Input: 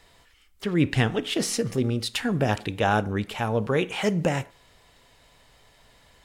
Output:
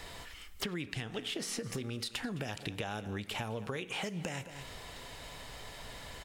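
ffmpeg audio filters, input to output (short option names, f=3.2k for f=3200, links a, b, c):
-filter_complex "[0:a]acrossover=split=940|2200[a][b][c];[a]acompressor=threshold=-34dB:ratio=4[d];[b]acompressor=threshold=-45dB:ratio=4[e];[c]acompressor=threshold=-36dB:ratio=4[f];[d][e][f]amix=inputs=3:normalize=0,asplit=2[g][h];[h]aecho=0:1:211:0.119[i];[g][i]amix=inputs=2:normalize=0,acompressor=threshold=-45dB:ratio=10,volume=10dB"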